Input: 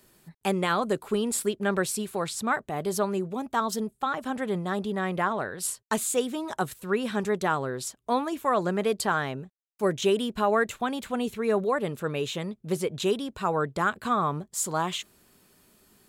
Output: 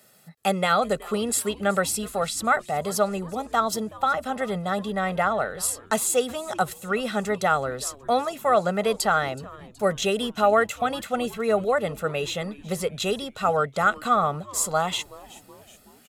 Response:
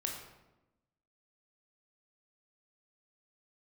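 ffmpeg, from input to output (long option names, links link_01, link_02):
-filter_complex "[0:a]highpass=180,aecho=1:1:1.5:0.78,asplit=5[link_01][link_02][link_03][link_04][link_05];[link_02]adelay=373,afreqshift=-140,volume=-21dB[link_06];[link_03]adelay=746,afreqshift=-280,volume=-25.9dB[link_07];[link_04]adelay=1119,afreqshift=-420,volume=-30.8dB[link_08];[link_05]adelay=1492,afreqshift=-560,volume=-35.6dB[link_09];[link_01][link_06][link_07][link_08][link_09]amix=inputs=5:normalize=0,volume=2.5dB"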